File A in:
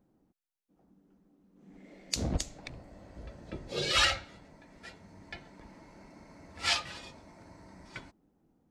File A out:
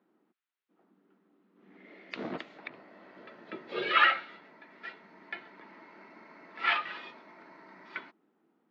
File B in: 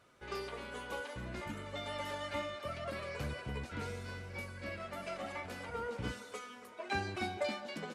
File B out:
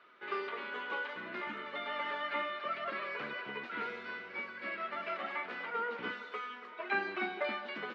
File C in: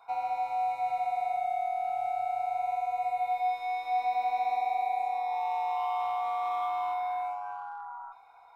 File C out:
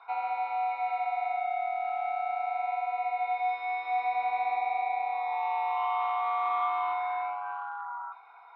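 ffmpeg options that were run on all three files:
-filter_complex "[0:a]acrossover=split=2800[a][b];[b]acompressor=threshold=-53dB:ratio=4:attack=1:release=60[c];[a][c]amix=inputs=2:normalize=0,highpass=f=260:w=0.5412,highpass=f=260:w=1.3066,equalizer=f=280:t=q:w=4:g=-7,equalizer=f=530:t=q:w=4:g=-8,equalizer=f=760:t=q:w=4:g=-5,equalizer=f=1.3k:t=q:w=4:g=4,equalizer=f=1.9k:t=q:w=4:g=3,lowpass=f=3.6k:w=0.5412,lowpass=f=3.6k:w=1.3066,volume=5dB"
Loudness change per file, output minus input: 0.0, +3.0, +0.5 LU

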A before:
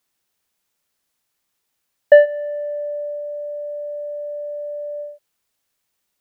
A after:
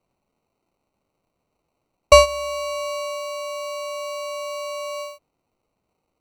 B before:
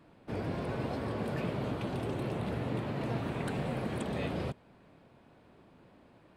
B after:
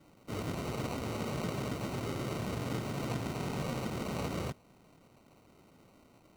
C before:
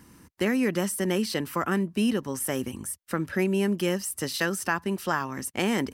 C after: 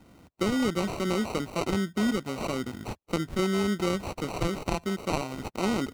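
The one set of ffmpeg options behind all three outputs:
-filter_complex "[0:a]acrusher=samples=26:mix=1:aa=0.000001,acrossover=split=9500[a][b];[b]acompressor=threshold=-48dB:ratio=4:attack=1:release=60[c];[a][c]amix=inputs=2:normalize=0,volume=-1.5dB"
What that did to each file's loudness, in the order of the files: -1.0, -1.5, -2.0 LU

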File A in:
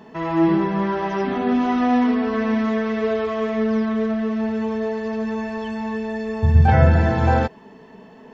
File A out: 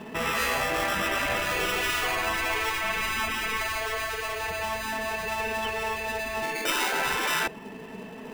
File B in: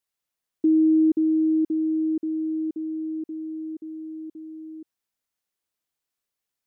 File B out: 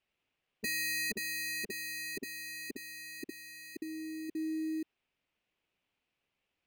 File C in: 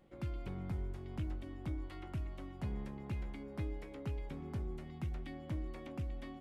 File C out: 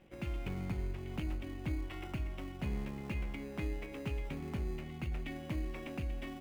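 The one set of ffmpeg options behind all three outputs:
-filter_complex "[0:a]lowpass=f=2.6k:t=q:w=2.8,aemphasis=mode=production:type=cd,asplit=2[a][b];[b]acrusher=samples=20:mix=1:aa=0.000001,volume=-5dB[c];[a][c]amix=inputs=2:normalize=0,afftfilt=real='re*lt(hypot(re,im),0.282)':imag='im*lt(hypot(re,im),0.282)':win_size=1024:overlap=0.75"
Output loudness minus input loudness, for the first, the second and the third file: -6.5, -13.5, +2.5 LU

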